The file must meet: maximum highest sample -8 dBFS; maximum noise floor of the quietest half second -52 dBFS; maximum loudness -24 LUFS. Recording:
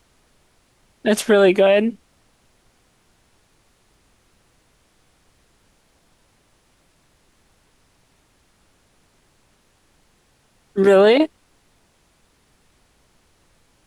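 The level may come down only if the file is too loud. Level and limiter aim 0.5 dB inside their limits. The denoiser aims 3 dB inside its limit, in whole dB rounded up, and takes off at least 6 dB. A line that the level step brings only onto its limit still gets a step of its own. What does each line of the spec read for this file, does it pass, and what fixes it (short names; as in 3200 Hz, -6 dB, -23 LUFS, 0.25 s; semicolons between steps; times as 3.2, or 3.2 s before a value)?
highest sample -5.5 dBFS: fail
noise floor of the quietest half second -60 dBFS: OK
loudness -16.5 LUFS: fail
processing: gain -8 dB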